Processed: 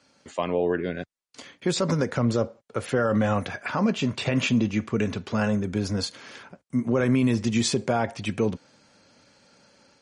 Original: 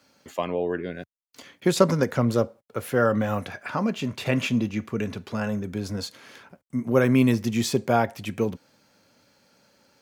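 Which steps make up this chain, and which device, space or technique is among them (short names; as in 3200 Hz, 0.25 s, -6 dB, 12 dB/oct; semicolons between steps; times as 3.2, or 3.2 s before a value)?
6.05–7.01 HPF 58 Hz 12 dB/oct; low-bitrate web radio (AGC gain up to 4 dB; limiter -13 dBFS, peak gain reduction 10.5 dB; MP3 40 kbps 44100 Hz)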